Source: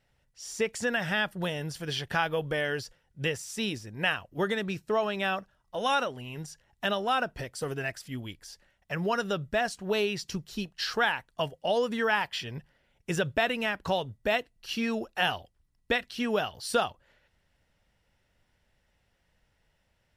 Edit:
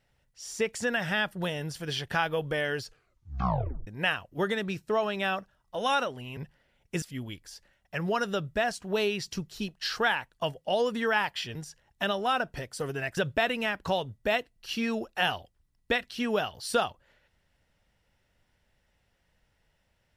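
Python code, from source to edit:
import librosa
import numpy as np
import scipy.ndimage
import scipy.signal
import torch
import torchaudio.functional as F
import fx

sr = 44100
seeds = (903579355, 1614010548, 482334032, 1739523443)

y = fx.edit(x, sr, fx.tape_stop(start_s=2.82, length_s=1.05),
    fx.swap(start_s=6.37, length_s=1.62, other_s=12.52, other_length_s=0.65), tone=tone)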